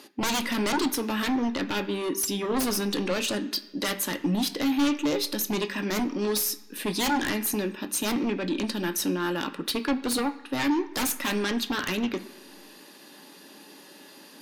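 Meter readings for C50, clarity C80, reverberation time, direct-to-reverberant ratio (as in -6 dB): 14.5 dB, 17.0 dB, 1.2 s, 7.5 dB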